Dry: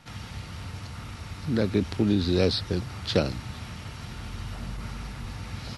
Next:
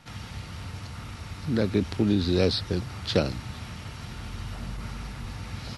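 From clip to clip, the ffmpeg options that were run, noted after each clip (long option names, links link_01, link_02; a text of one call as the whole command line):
ffmpeg -i in.wav -af anull out.wav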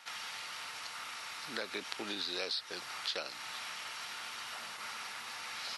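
ffmpeg -i in.wav -af "highpass=1000,acompressor=threshold=-38dB:ratio=4,volume=3dB" out.wav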